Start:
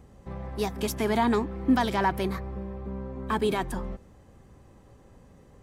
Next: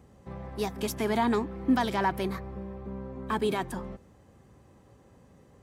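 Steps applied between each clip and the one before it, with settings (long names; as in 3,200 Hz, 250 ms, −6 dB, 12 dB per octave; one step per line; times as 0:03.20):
high-pass filter 71 Hz
level −2 dB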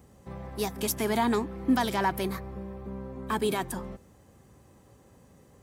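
high-shelf EQ 6,900 Hz +11.5 dB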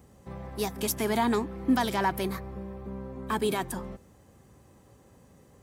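no processing that can be heard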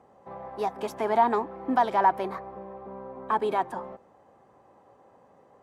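resonant band-pass 790 Hz, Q 1.7
level +8.5 dB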